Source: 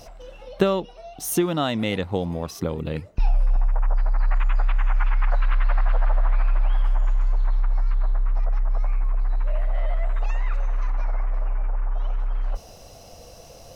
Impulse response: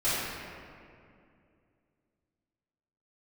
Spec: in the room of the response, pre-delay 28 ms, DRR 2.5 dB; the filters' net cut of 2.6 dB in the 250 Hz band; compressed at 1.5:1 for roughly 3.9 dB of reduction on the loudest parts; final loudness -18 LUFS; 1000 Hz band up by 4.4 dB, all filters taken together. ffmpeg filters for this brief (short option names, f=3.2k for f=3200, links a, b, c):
-filter_complex "[0:a]equalizer=f=250:t=o:g=-4.5,equalizer=f=1k:t=o:g=6,acompressor=threshold=-26dB:ratio=1.5,asplit=2[a][b];[1:a]atrim=start_sample=2205,adelay=28[c];[b][c]afir=irnorm=-1:irlink=0,volume=-14.5dB[d];[a][d]amix=inputs=2:normalize=0,volume=8.5dB"